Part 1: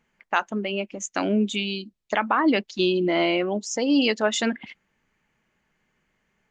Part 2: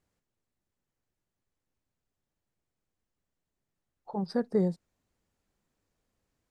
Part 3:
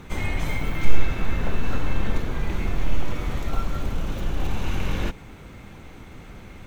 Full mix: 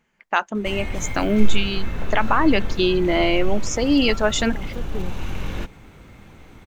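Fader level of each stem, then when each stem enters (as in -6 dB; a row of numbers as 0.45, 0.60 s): +2.5, -6.0, -2.5 dB; 0.00, 0.40, 0.55 s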